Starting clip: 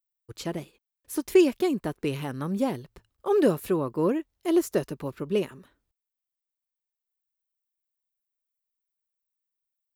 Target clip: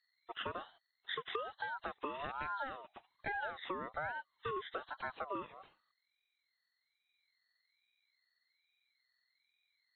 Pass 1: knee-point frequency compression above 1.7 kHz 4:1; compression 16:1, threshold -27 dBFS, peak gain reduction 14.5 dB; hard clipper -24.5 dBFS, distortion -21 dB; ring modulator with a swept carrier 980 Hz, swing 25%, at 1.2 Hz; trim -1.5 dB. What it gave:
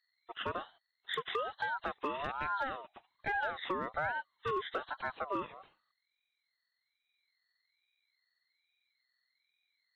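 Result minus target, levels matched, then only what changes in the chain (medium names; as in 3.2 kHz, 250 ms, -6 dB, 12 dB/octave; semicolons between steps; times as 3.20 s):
compression: peak gain reduction -5.5 dB
change: compression 16:1, threshold -33 dBFS, peak gain reduction 20 dB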